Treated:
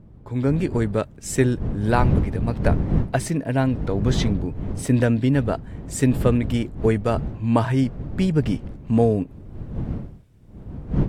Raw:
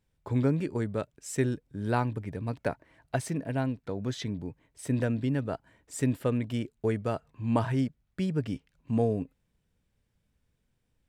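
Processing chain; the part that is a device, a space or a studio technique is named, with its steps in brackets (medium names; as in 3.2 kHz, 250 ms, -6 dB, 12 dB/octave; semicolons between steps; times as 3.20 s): smartphone video outdoors (wind noise 150 Hz -34 dBFS; level rider gain up to 12.5 dB; trim -2.5 dB; AAC 64 kbps 48 kHz)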